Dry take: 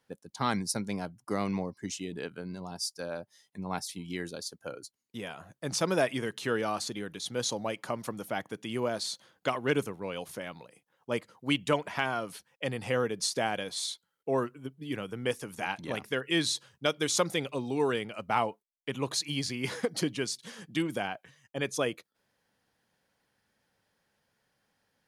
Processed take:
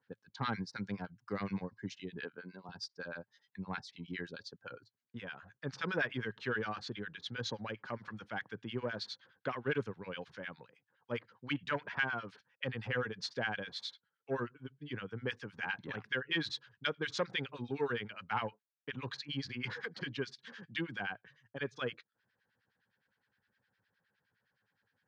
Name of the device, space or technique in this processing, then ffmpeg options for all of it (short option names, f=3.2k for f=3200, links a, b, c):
guitar amplifier with harmonic tremolo: -filter_complex "[0:a]asettb=1/sr,asplit=3[a][b][c];[a]atrim=end=2.244[d];[b]atrim=start=2.24:end=2.69,asetpts=PTS-STARTPTS,afade=t=in:d=0.004:c=qsin,afade=t=out:st=0.446:d=0.004:c=qsin,highpass=250[e];[c]atrim=start=2.686[f];[d][e]acrossfade=d=0.004:c1=hsin:c2=qsin[g];[g][f]acrossfade=d=0.004:c1=qsin:c2=hsin,acrossover=split=1200[h][i];[h]aeval=exprs='val(0)*(1-1/2+1/2*cos(2*PI*9.7*n/s))':c=same[j];[i]aeval=exprs='val(0)*(1-1/2-1/2*cos(2*PI*9.7*n/s))':c=same[k];[j][k]amix=inputs=2:normalize=0,asoftclip=type=tanh:threshold=-20dB,highpass=75,equalizer=f=110:t=q:w=4:g=6,equalizer=f=320:t=q:w=4:g=-4,equalizer=f=650:t=q:w=4:g=-7,equalizer=f=1.6k:t=q:w=4:g=9,lowpass=f=4.5k:w=0.5412,lowpass=f=4.5k:w=1.3066,volume=-1.5dB"